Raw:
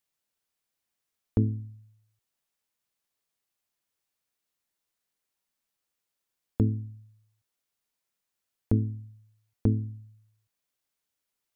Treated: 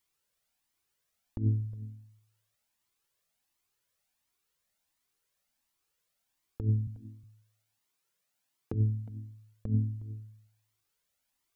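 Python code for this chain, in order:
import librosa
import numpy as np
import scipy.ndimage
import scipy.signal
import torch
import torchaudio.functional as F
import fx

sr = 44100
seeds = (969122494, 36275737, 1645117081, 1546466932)

y = fx.highpass(x, sr, hz=100.0, slope=24, at=(6.87, 8.74))
y = fx.over_compress(y, sr, threshold_db=-27.0, ratio=-0.5)
y = y + 10.0 ** (-17.5 / 20.0) * np.pad(y, (int(362 * sr / 1000.0), 0))[:len(y)]
y = fx.comb_cascade(y, sr, direction='rising', hz=1.4)
y = y * librosa.db_to_amplitude(4.5)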